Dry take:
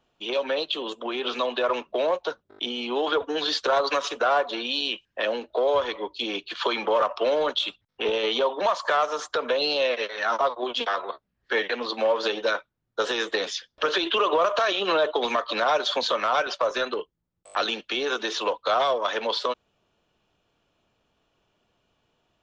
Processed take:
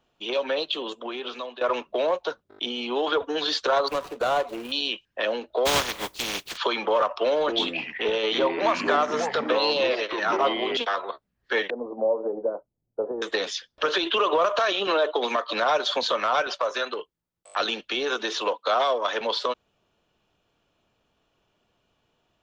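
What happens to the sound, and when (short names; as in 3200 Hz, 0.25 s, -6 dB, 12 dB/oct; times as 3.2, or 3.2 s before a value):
0.79–1.61 fade out, to -14 dB
3.88–4.72 median filter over 25 samples
5.65–6.56 spectral contrast lowered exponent 0.3
7.37–10.77 echoes that change speed 0.109 s, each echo -5 st, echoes 2, each echo -6 dB
11.7–13.22 inverse Chebyshev low-pass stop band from 2500 Hz, stop band 60 dB
14.87–15.53 elliptic high-pass 190 Hz
16.6–17.6 low shelf 320 Hz -9.5 dB
18.41–19.21 HPF 180 Hz 24 dB/oct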